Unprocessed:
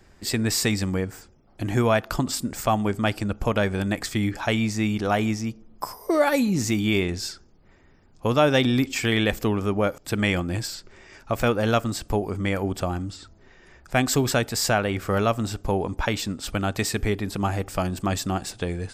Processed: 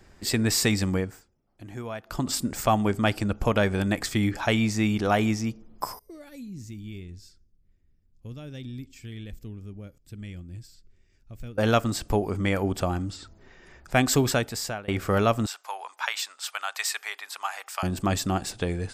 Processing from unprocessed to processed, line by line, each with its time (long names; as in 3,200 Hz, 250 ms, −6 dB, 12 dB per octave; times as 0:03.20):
0:00.96–0:02.33: duck −15 dB, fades 0.29 s
0:05.99–0:11.58: guitar amp tone stack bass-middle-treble 10-0-1
0:14.21–0:14.88: fade out, to −23.5 dB
0:15.46–0:17.83: high-pass filter 900 Hz 24 dB per octave